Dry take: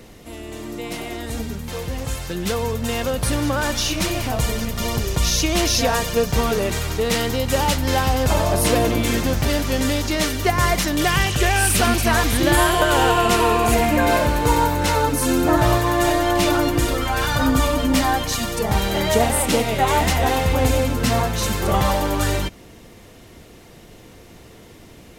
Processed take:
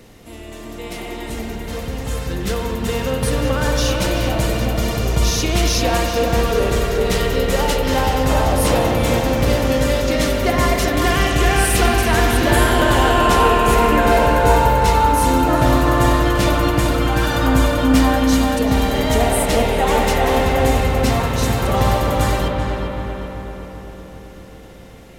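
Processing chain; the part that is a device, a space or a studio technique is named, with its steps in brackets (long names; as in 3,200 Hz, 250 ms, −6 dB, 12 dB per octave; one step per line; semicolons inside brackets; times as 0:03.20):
dub delay into a spring reverb (feedback echo with a low-pass in the loop 387 ms, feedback 61%, low-pass 2,200 Hz, level −4 dB; spring reverb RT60 3.4 s, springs 53 ms, chirp 30 ms, DRR 2 dB)
level −1.5 dB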